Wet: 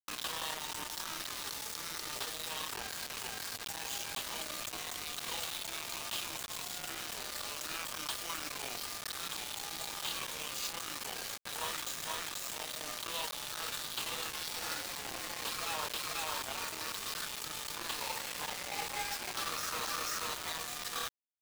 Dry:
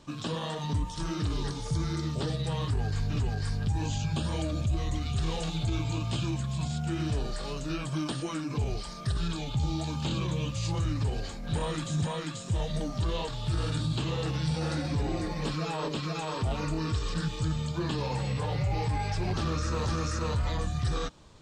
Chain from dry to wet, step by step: HPF 1000 Hz 12 dB/oct; in parallel at -3 dB: negative-ratio compressor -48 dBFS, ratio -0.5; on the sum: bit-crush 6-bit

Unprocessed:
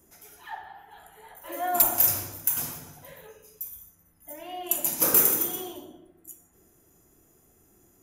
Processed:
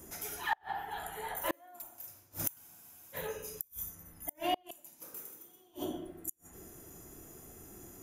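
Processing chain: flipped gate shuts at -28 dBFS, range -36 dB; spectral freeze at 2.61, 0.53 s; gain +9 dB

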